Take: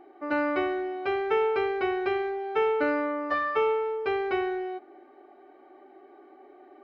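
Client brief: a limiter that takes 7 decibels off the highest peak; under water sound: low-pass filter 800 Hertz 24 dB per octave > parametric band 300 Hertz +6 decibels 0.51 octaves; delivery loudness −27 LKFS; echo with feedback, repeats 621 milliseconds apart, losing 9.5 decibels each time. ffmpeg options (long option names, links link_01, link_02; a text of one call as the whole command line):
ffmpeg -i in.wav -af "alimiter=limit=-21.5dB:level=0:latency=1,lowpass=frequency=800:width=0.5412,lowpass=frequency=800:width=1.3066,equalizer=frequency=300:width_type=o:width=0.51:gain=6,aecho=1:1:621|1242|1863|2484:0.335|0.111|0.0365|0.012,volume=2.5dB" out.wav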